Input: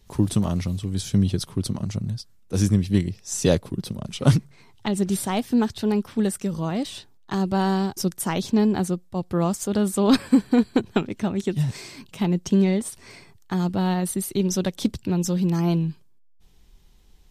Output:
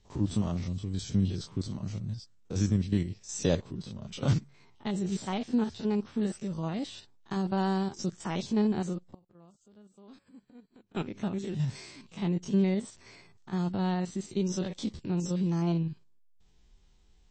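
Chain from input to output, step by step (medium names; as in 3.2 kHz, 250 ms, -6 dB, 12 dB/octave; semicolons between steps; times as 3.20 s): spectrogram pixelated in time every 50 ms; 9.02–10.95 s: inverted gate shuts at -28 dBFS, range -27 dB; trim -6 dB; MP3 32 kbps 22.05 kHz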